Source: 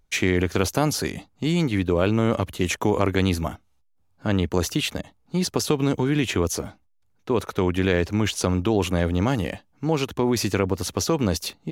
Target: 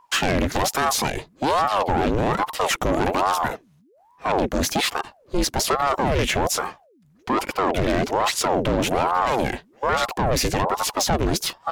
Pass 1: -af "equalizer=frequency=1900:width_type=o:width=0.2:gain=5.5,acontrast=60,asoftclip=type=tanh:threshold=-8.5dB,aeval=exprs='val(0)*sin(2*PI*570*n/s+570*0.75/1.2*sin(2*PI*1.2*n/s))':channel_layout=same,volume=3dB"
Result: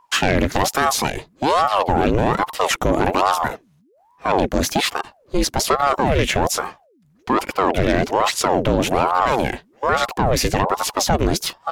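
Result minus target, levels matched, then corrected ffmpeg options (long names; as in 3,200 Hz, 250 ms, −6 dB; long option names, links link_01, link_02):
soft clipping: distortion −8 dB
-af "equalizer=frequency=1900:width_type=o:width=0.2:gain=5.5,acontrast=60,asoftclip=type=tanh:threshold=-16dB,aeval=exprs='val(0)*sin(2*PI*570*n/s+570*0.75/1.2*sin(2*PI*1.2*n/s))':channel_layout=same,volume=3dB"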